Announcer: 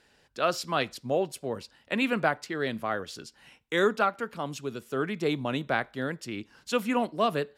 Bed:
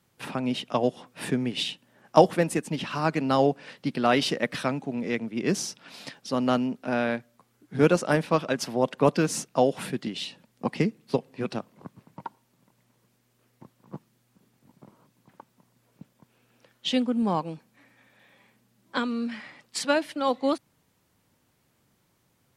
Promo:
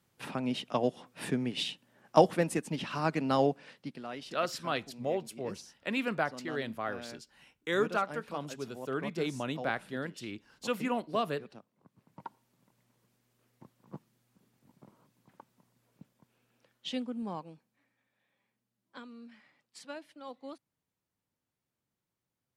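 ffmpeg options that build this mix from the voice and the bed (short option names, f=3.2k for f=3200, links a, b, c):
-filter_complex "[0:a]adelay=3950,volume=-5.5dB[a];[1:a]volume=9.5dB,afade=t=out:st=3.44:d=0.62:silence=0.177828,afade=t=in:st=11.86:d=0.47:silence=0.188365,afade=t=out:st=15.55:d=2.48:silence=0.188365[b];[a][b]amix=inputs=2:normalize=0"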